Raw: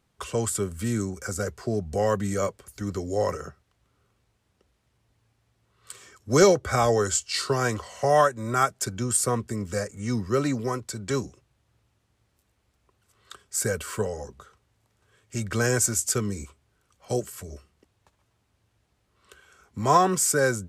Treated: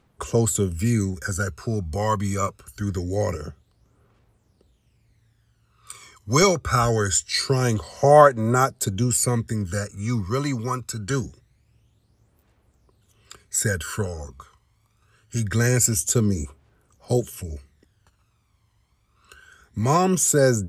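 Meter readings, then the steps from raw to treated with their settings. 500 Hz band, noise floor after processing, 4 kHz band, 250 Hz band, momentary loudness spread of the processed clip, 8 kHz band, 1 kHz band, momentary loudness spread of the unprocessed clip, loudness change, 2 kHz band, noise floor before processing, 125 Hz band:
+2.5 dB, −66 dBFS, +3.5 dB, +4.0 dB, 13 LU, +3.0 dB, +2.5 dB, 16 LU, +3.0 dB, +2.0 dB, −72 dBFS, +7.0 dB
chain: phase shifter 0.24 Hz, delay 1 ms, feedback 61%
level +1 dB

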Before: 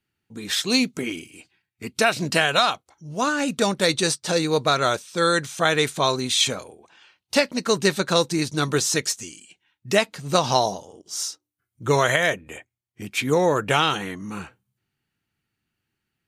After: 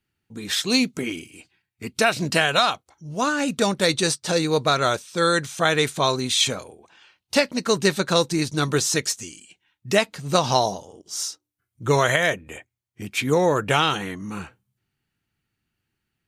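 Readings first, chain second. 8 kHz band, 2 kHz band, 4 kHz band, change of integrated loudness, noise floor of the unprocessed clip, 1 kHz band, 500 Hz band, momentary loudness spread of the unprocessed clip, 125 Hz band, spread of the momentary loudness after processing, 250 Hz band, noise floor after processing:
0.0 dB, 0.0 dB, 0.0 dB, 0.0 dB, −83 dBFS, 0.0 dB, 0.0 dB, 14 LU, +1.5 dB, 14 LU, +0.5 dB, −81 dBFS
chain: low-shelf EQ 74 Hz +7 dB

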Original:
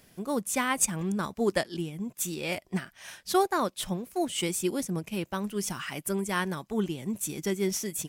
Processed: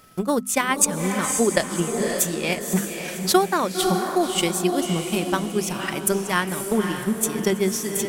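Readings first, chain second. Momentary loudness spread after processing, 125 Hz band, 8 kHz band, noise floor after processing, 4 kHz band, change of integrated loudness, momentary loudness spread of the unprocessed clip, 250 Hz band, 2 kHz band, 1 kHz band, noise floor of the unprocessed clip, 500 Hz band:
5 LU, +6.5 dB, +8.5 dB, −32 dBFS, +8.5 dB, +8.0 dB, 8 LU, +7.5 dB, +8.0 dB, +7.5 dB, −63 dBFS, +8.0 dB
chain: steady tone 1,300 Hz −58 dBFS
transient designer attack +10 dB, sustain −2 dB
mains-hum notches 50/100/150/200/250 Hz
on a send: feedback delay with all-pass diffusion 548 ms, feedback 44%, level −7 dB
on the sum: floating-point word with a short mantissa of 8 bits
in parallel at −3 dB: compressor whose output falls as the input rises −24 dBFS
on the sum: level −1 dB

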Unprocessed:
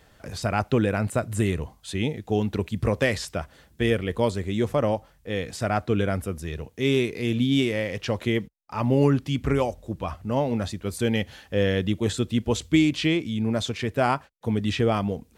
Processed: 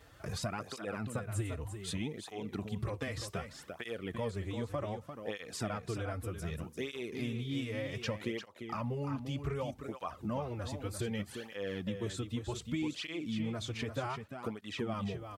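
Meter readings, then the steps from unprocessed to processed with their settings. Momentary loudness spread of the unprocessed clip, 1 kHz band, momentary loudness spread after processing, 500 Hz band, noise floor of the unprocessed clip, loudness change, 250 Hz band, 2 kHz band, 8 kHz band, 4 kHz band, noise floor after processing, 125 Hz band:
9 LU, −12.5 dB, 5 LU, −14.5 dB, −59 dBFS, −13.5 dB, −14.0 dB, −13.0 dB, −8.5 dB, −11.5 dB, −56 dBFS, −12.0 dB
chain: parametric band 1,200 Hz +5.5 dB 0.42 octaves
downward compressor 6 to 1, threshold −32 dBFS, peak gain reduction 16 dB
on a send: single-tap delay 346 ms −8 dB
on the sum: through-zero flanger with one copy inverted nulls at 0.65 Hz, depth 5.7 ms

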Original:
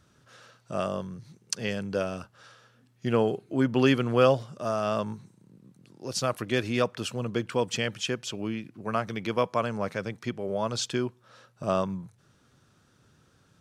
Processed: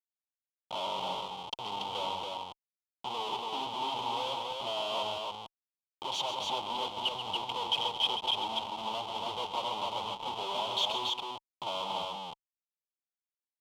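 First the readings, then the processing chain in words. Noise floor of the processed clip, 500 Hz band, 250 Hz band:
below −85 dBFS, −12.0 dB, −19.0 dB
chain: camcorder AGC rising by 6.6 dB per second
low-pass that shuts in the quiet parts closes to 1,200 Hz, open at −19 dBFS
flanger swept by the level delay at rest 4.1 ms, full sweep at −24 dBFS
comparator with hysteresis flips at −37 dBFS
pair of resonant band-passes 1,700 Hz, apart 1.8 octaves
loudspeakers that aren't time-aligned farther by 46 metres −9 dB, 97 metres −3 dB
level +8 dB

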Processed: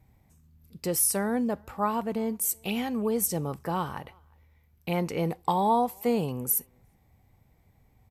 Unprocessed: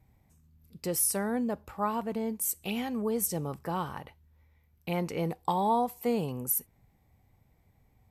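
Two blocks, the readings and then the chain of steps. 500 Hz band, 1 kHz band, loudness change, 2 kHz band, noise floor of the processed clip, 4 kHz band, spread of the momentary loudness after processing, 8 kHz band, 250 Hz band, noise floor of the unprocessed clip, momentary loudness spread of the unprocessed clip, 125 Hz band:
+3.0 dB, +3.0 dB, +3.0 dB, +3.0 dB, −64 dBFS, +3.0 dB, 8 LU, +3.0 dB, +3.0 dB, −67 dBFS, 8 LU, +3.0 dB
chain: far-end echo of a speakerphone 360 ms, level −29 dB
level +3 dB

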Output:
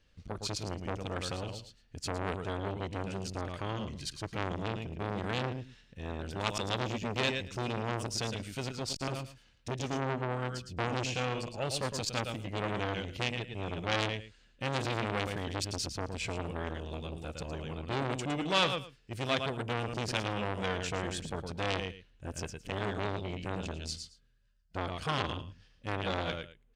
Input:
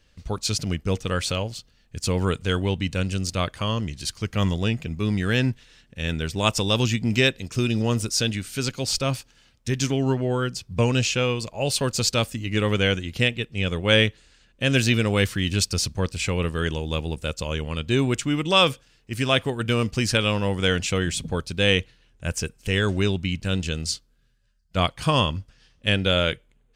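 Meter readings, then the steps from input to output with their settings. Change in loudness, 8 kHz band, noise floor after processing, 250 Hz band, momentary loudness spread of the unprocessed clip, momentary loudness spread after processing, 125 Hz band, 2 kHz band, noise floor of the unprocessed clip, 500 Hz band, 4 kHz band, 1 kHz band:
−11.5 dB, −13.0 dB, −65 dBFS, −12.5 dB, 9 LU, 9 LU, −12.5 dB, −11.0 dB, −62 dBFS, −10.5 dB, −12.5 dB, −6.0 dB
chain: high-shelf EQ 7,100 Hz −9 dB
on a send: repeating echo 111 ms, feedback 15%, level −8 dB
on the sum: saturating transformer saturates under 2,600 Hz
level −6.5 dB

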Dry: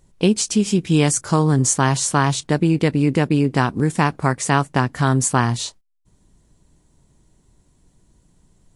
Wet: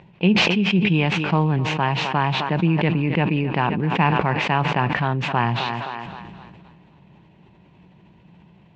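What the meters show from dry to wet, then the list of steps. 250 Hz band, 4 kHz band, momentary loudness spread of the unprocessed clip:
−2.5 dB, +2.5 dB, 3 LU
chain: gap after every zero crossing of 0.051 ms
upward compression, threshold −30 dBFS
loudspeaker in its box 130–3,100 Hz, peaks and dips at 180 Hz +7 dB, 260 Hz −7 dB, 450 Hz −3 dB, 880 Hz +5 dB, 1,300 Hz −5 dB, 2,600 Hz +9 dB
feedback echo with a high-pass in the loop 261 ms, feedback 55%, high-pass 260 Hz, level −16.5 dB
level that may fall only so fast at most 22 dB per second
level −4 dB

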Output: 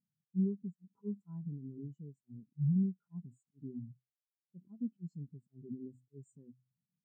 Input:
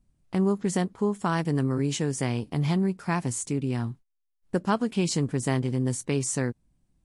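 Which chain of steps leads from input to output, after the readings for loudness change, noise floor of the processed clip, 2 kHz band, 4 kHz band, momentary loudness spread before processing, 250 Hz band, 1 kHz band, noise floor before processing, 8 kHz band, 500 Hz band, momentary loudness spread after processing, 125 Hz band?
−12.0 dB, below −85 dBFS, below −40 dB, below −40 dB, 6 LU, −11.5 dB, below −40 dB, −77 dBFS, below −40 dB, −22.5 dB, 21 LU, −12.0 dB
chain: compressor on every frequency bin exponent 0.6
high-pass filter 66 Hz 24 dB per octave
high-shelf EQ 3,200 Hz +5.5 dB
hum removal 127.1 Hz, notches 2
volume swells 281 ms
downward compressor 16 to 1, threshold −36 dBFS, peak gain reduction 18 dB
hard clipping −33 dBFS, distortion −19 dB
every bin expanded away from the loudest bin 4 to 1
level +9.5 dB

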